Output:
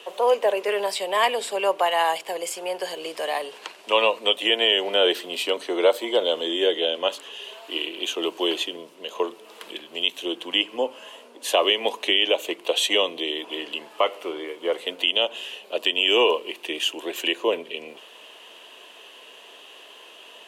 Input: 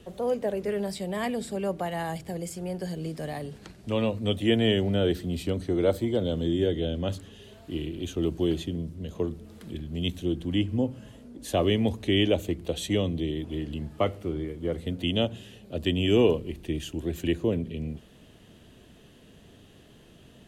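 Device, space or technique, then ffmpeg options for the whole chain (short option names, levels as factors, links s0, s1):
laptop speaker: -af "highpass=f=450:w=0.5412,highpass=f=450:w=1.3066,equalizer=f=1000:t=o:w=0.38:g=10.5,equalizer=f=2800:t=o:w=0.56:g=10,alimiter=limit=0.15:level=0:latency=1:release=183,volume=2.66"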